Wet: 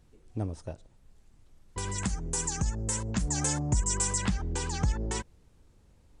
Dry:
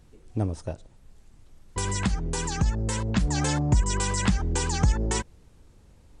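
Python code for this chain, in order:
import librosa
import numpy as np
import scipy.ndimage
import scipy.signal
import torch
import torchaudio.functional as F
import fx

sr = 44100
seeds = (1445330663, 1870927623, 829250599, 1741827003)

y = fx.high_shelf_res(x, sr, hz=5300.0, db=8.0, q=1.5, at=(1.98, 4.18))
y = F.gain(torch.from_numpy(y), -6.0).numpy()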